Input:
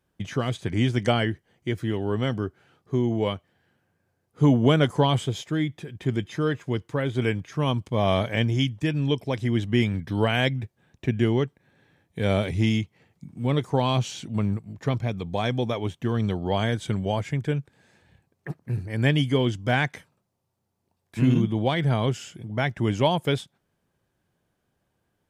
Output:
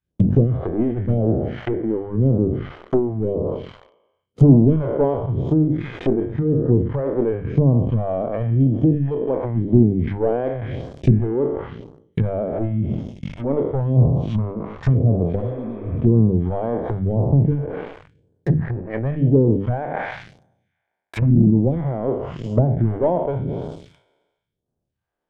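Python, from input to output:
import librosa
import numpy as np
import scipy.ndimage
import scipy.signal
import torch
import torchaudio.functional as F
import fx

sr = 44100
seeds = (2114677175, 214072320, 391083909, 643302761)

y = fx.spec_trails(x, sr, decay_s=1.44)
y = fx.transient(y, sr, attack_db=10, sustain_db=-6)
y = fx.rider(y, sr, range_db=10, speed_s=2.0)
y = fx.peak_eq(y, sr, hz=630.0, db=2.5, octaves=1.0)
y = fx.leveller(y, sr, passes=3)
y = fx.high_shelf(y, sr, hz=2700.0, db=-11.5)
y = fx.env_lowpass_down(y, sr, base_hz=440.0, full_db=-8.0)
y = fx.hum_notches(y, sr, base_hz=50, count=6)
y = fx.phaser_stages(y, sr, stages=2, low_hz=100.0, high_hz=2100.0, hz=0.94, feedback_pct=35)
y = fx.spec_repair(y, sr, seeds[0], start_s=15.42, length_s=0.55, low_hz=260.0, high_hz=2600.0, source='both')
y = fx.sustainer(y, sr, db_per_s=100.0)
y = y * librosa.db_to_amplitude(-4.0)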